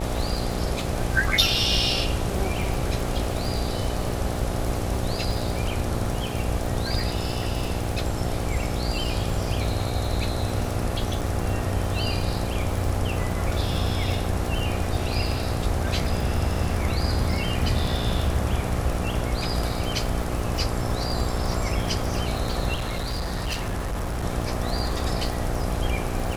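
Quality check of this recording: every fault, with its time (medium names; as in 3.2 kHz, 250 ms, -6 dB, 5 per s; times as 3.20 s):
buzz 60 Hz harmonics 14 -30 dBFS
crackle 85 per s -29 dBFS
11.21–11.22 s: dropout 5.4 ms
22.74–24.24 s: clipped -24 dBFS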